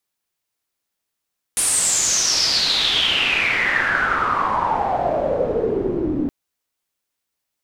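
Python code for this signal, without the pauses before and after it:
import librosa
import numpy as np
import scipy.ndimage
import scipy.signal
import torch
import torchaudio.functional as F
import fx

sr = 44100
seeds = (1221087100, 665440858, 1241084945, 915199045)

y = fx.riser_noise(sr, seeds[0], length_s=4.72, colour='white', kind='lowpass', start_hz=9800.0, end_hz=270.0, q=7.5, swell_db=12.0, law='exponential')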